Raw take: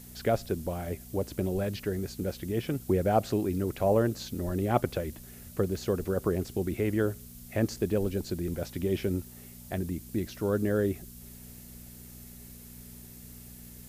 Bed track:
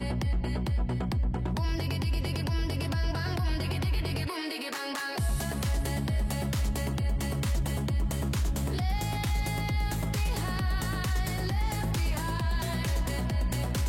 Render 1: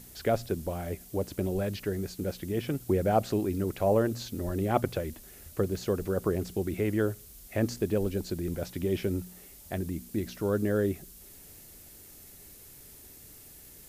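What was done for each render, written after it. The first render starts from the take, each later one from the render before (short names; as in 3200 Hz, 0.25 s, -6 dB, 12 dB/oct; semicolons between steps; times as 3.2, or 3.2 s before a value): de-hum 60 Hz, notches 4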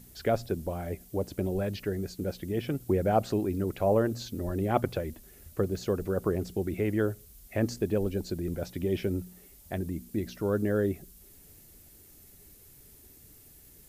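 denoiser 6 dB, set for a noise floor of -51 dBFS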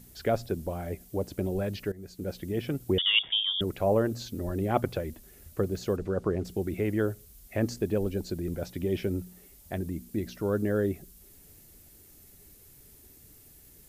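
1.92–2.36 fade in, from -18 dB; 2.98–3.61 inverted band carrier 3500 Hz; 5.96–6.45 air absorption 65 m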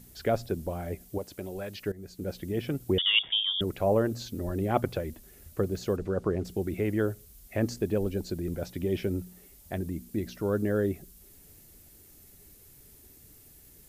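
1.18–1.86 low shelf 490 Hz -11 dB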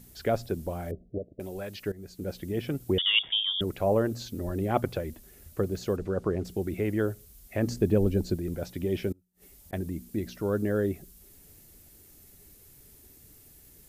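0.91–1.4 Chebyshev low-pass 660 Hz, order 6; 7.67–8.36 low shelf 410 Hz +7.5 dB; 9.12–9.73 flipped gate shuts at -39 dBFS, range -31 dB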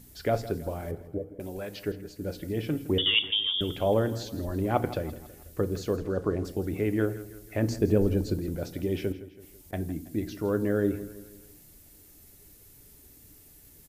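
feedback echo 0.164 s, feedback 49%, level -16 dB; FDN reverb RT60 0.44 s, low-frequency decay 1.25×, high-frequency decay 0.75×, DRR 10.5 dB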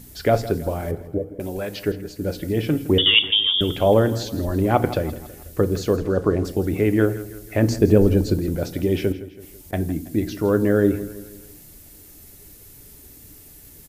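gain +8.5 dB; limiter -3 dBFS, peak gain reduction 2.5 dB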